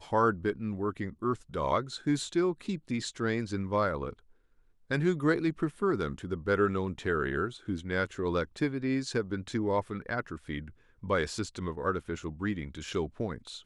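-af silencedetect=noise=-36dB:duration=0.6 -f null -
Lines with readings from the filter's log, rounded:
silence_start: 4.13
silence_end: 4.91 | silence_duration: 0.78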